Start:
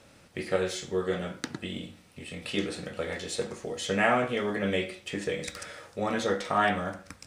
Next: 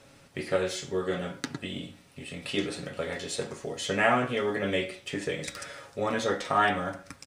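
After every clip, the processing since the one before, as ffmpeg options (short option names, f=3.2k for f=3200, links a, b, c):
-af "aecho=1:1:7.3:0.42"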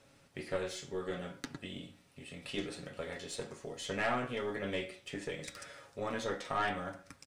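-af "aeval=exprs='(tanh(7.08*val(0)+0.4)-tanh(0.4))/7.08':c=same,volume=-7dB"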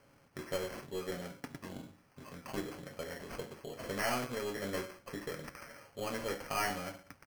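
-af "acrusher=samples=12:mix=1:aa=0.000001,volume=-1dB"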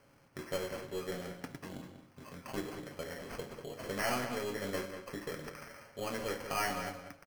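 -filter_complex "[0:a]asplit=2[a][b];[b]adelay=192,lowpass=f=4.3k:p=1,volume=-8.5dB,asplit=2[c][d];[d]adelay=192,lowpass=f=4.3k:p=1,volume=0.15[e];[a][c][e]amix=inputs=3:normalize=0"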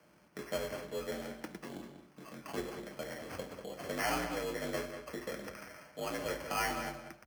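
-af "afreqshift=50"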